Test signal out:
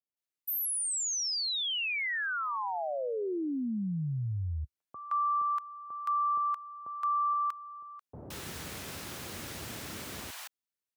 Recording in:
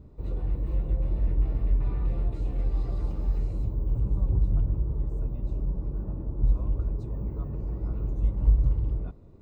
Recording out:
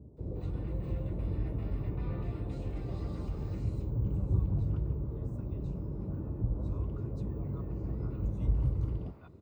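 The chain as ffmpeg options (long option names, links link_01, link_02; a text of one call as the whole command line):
ffmpeg -i in.wav -filter_complex "[0:a]highpass=frequency=67:width=0.5412,highpass=frequency=67:width=1.3066,acrossover=split=790[link_01][link_02];[link_02]adelay=170[link_03];[link_01][link_03]amix=inputs=2:normalize=0" out.wav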